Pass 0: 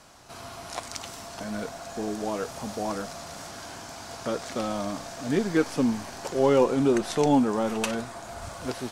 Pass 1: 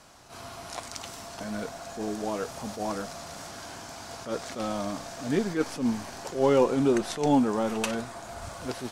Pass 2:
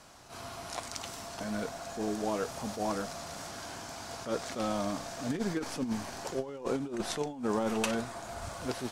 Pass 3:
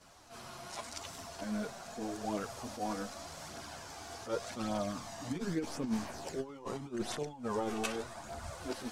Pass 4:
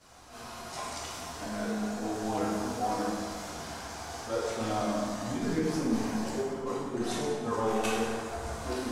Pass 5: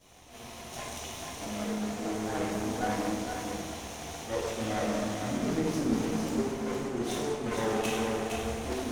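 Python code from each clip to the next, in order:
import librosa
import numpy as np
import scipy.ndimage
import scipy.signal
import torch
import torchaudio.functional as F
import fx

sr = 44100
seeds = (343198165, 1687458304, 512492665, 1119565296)

y1 = fx.attack_slew(x, sr, db_per_s=160.0)
y1 = y1 * librosa.db_to_amplitude(-1.0)
y2 = fx.over_compress(y1, sr, threshold_db=-27.0, ratio=-0.5)
y2 = y2 * librosa.db_to_amplitude(-3.5)
y3 = fx.chorus_voices(y2, sr, voices=2, hz=0.42, base_ms=11, depth_ms=2.9, mix_pct=65)
y3 = y3 * librosa.db_to_amplitude(-1.5)
y4 = fx.rev_plate(y3, sr, seeds[0], rt60_s=1.9, hf_ratio=0.6, predelay_ms=0, drr_db=-5.5)
y5 = fx.lower_of_two(y4, sr, delay_ms=0.32)
y5 = y5 + 10.0 ** (-5.0 / 20.0) * np.pad(y5, (int(462 * sr / 1000.0), 0))[:len(y5)]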